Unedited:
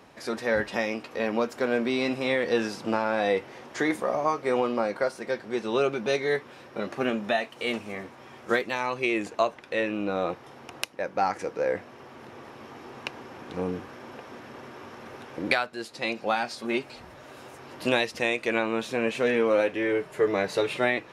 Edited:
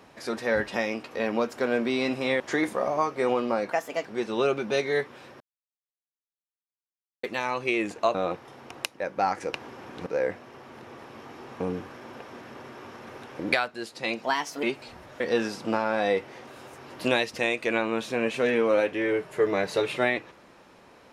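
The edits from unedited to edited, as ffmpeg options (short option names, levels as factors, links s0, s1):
-filter_complex "[0:a]asplit=14[s0][s1][s2][s3][s4][s5][s6][s7][s8][s9][s10][s11][s12][s13];[s0]atrim=end=2.402[s14];[s1]atrim=start=3.668:end=4.994[s15];[s2]atrim=start=4.99:end=5.41,asetpts=PTS-STARTPTS,asetrate=55566,aresample=44100[s16];[s3]atrim=start=5.406:end=6.76,asetpts=PTS-STARTPTS,afade=t=out:st=1.35:d=0.004:c=hsin[s17];[s4]atrim=start=6.76:end=8.59,asetpts=PTS-STARTPTS,volume=0[s18];[s5]atrim=start=8.59:end=9.502,asetpts=PTS-STARTPTS,afade=t=in:d=0.004:c=hsin[s19];[s6]atrim=start=10.128:end=11.522[s20];[s7]atrim=start=13.058:end=13.592[s21];[s8]atrim=start=11.518:end=13.062[s22];[s9]atrim=start=13.588:end=16.224[s23];[s10]atrim=start=16.22:end=16.71,asetpts=PTS-STARTPTS,asetrate=54243,aresample=44100,atrim=end_sample=17568,asetpts=PTS-STARTPTS[s24];[s11]atrim=start=16.706:end=17.282[s25];[s12]atrim=start=2.398:end=3.672[s26];[s13]atrim=start=17.278[s27];[s14][s15]acrossfade=d=0.004:c1=hsin:c2=hsin[s28];[s28][s16]acrossfade=d=0.004:c1=hsin:c2=hsin[s29];[s17][s18][s19]concat=n=3:v=0:a=1[s30];[s29][s30]acrossfade=d=0.004:c1=hsin:c2=hsin[s31];[s31][s20]acrossfade=d=0.004:c1=hsin:c2=hsin[s32];[s32][s21]acrossfade=d=0.004:c1=hsin:c2=hsin[s33];[s33][s22]acrossfade=d=0.004:c1=hsin:c2=hsin[s34];[s34][s23]acrossfade=d=0.004:c1=hsin:c2=hsin[s35];[s35][s24]acrossfade=d=0.004:c1=hsin:c2=hsin[s36];[s36][s25]acrossfade=d=0.004:c1=hsin:c2=hsin[s37];[s37][s26]acrossfade=d=0.004:c1=hsin:c2=hsin[s38];[s38][s27]acrossfade=d=0.004:c1=hsin:c2=hsin"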